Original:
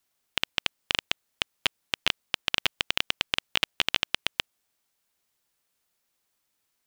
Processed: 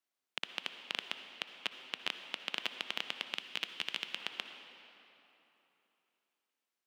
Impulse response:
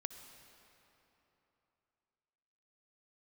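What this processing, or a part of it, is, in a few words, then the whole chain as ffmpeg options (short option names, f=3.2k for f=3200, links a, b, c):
swimming-pool hall: -filter_complex "[0:a]highpass=f=200:w=0.5412,highpass=f=200:w=1.3066[a];[1:a]atrim=start_sample=2205[b];[a][b]afir=irnorm=-1:irlink=0,highshelf=f=5.8k:g=-7.5,asettb=1/sr,asplit=3[c][d][e];[c]atrim=end=3.344[f];[d]atrim=start=3.34:end=4.16,asetpts=PTS-STARTPTS,afade=t=in:d=0.004:c=qsin,afade=t=out:st=0.816:d=0.004:c=qsin,equalizer=f=710:t=o:w=2.2:g=-5.5[g];[e]atrim=start=4.156[h];[f][g]acrossfade=d=0.004:c1=hsin:c2=qsin[i];[i][h]acrossfade=d=0.004:c1=qsin:c2=hsin,volume=-7dB"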